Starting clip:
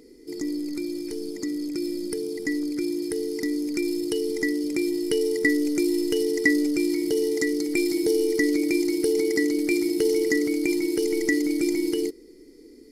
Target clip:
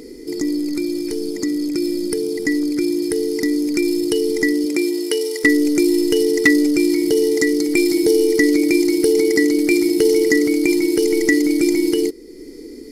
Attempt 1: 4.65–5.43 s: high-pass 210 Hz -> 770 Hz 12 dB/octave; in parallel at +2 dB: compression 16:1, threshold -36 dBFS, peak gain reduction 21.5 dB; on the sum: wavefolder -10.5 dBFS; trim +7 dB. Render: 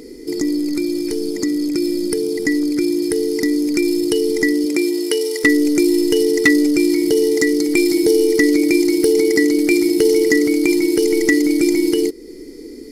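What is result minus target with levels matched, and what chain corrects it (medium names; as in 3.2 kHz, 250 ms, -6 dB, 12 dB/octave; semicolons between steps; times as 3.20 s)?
compression: peak gain reduction -9 dB
4.65–5.43 s: high-pass 210 Hz -> 770 Hz 12 dB/octave; in parallel at +2 dB: compression 16:1, threshold -45.5 dBFS, peak gain reduction 30.5 dB; on the sum: wavefolder -10.5 dBFS; trim +7 dB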